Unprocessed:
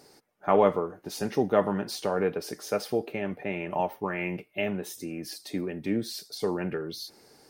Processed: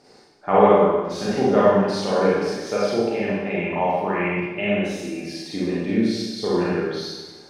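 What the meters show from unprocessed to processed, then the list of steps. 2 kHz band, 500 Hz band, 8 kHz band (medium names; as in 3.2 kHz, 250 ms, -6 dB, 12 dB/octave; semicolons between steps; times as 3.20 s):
+8.0 dB, +8.5 dB, +2.5 dB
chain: low-pass 5.7 kHz 12 dB/octave; Schroeder reverb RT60 1.2 s, combs from 31 ms, DRR -7.5 dB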